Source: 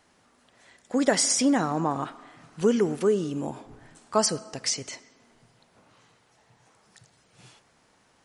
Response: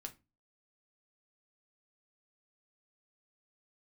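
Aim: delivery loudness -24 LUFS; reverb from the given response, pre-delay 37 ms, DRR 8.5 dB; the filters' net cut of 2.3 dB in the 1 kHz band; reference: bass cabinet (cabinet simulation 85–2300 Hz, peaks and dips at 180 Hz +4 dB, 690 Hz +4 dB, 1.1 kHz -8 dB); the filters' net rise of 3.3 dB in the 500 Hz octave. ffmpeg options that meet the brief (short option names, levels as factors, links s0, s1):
-filter_complex "[0:a]equalizer=f=500:t=o:g=4.5,equalizer=f=1000:t=o:g=-5.5,asplit=2[s0][s1];[1:a]atrim=start_sample=2205,adelay=37[s2];[s1][s2]afir=irnorm=-1:irlink=0,volume=0.596[s3];[s0][s3]amix=inputs=2:normalize=0,highpass=f=85:w=0.5412,highpass=f=85:w=1.3066,equalizer=f=180:t=q:w=4:g=4,equalizer=f=690:t=q:w=4:g=4,equalizer=f=1100:t=q:w=4:g=-8,lowpass=f=2300:w=0.5412,lowpass=f=2300:w=1.3066"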